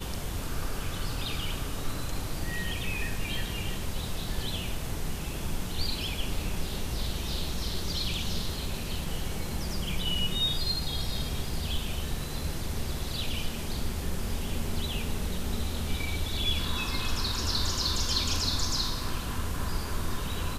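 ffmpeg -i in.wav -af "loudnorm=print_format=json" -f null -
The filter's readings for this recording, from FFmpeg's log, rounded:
"input_i" : "-31.8",
"input_tp" : "-13.5",
"input_lra" : "4.7",
"input_thresh" : "-41.8",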